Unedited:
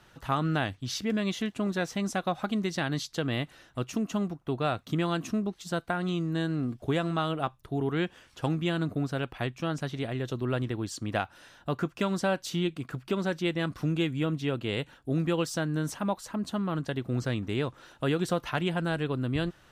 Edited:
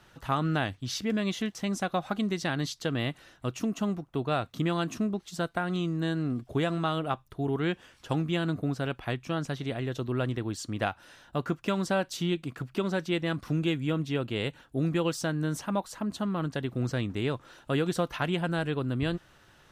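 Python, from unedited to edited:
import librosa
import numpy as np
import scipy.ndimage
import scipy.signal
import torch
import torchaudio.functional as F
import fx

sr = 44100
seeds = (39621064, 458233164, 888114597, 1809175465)

y = fx.edit(x, sr, fx.cut(start_s=1.55, length_s=0.33), tone=tone)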